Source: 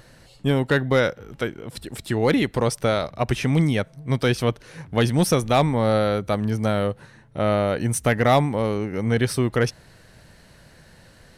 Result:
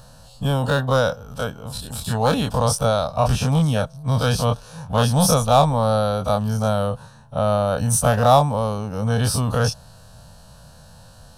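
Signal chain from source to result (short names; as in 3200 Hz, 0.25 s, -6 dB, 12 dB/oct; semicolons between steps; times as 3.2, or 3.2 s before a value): spectral dilation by 60 ms; fixed phaser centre 850 Hz, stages 4; gain +3 dB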